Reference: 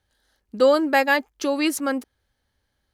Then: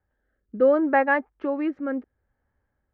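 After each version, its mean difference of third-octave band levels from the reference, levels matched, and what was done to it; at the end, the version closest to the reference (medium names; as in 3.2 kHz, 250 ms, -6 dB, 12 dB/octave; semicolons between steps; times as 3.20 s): 7.0 dB: low-pass 1.8 kHz 24 dB/octave; rotary cabinet horn 0.7 Hz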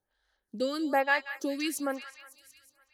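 4.5 dB: feedback echo behind a high-pass 184 ms, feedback 62%, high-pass 1.7 kHz, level -8 dB; lamp-driven phase shifter 1.1 Hz; trim -6 dB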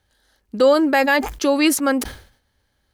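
2.5 dB: peak limiter -11.5 dBFS, peak gain reduction 5 dB; decay stretcher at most 110 dB/s; trim +5.5 dB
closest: third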